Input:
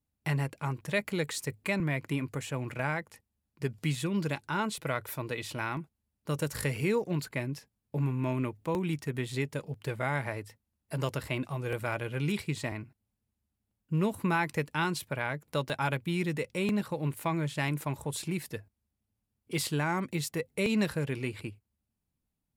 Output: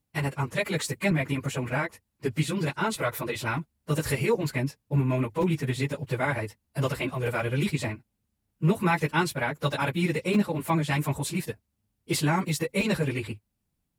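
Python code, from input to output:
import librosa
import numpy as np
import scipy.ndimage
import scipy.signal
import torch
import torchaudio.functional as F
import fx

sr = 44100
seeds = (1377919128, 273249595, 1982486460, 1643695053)

y = fx.stretch_vocoder_free(x, sr, factor=0.62)
y = F.gain(torch.from_numpy(y), 8.5).numpy()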